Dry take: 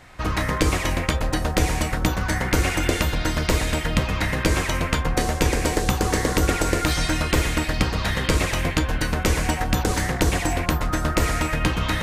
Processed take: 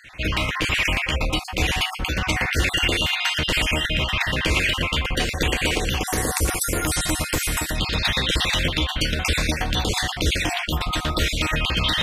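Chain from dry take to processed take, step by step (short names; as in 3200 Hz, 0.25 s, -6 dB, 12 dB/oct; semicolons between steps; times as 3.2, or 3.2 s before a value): random spectral dropouts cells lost 33%; bell 2800 Hz +15 dB 0.92 oct, from 6.07 s 11000 Hz, from 7.78 s 3400 Hz; limiter -10 dBFS, peak gain reduction 11.5 dB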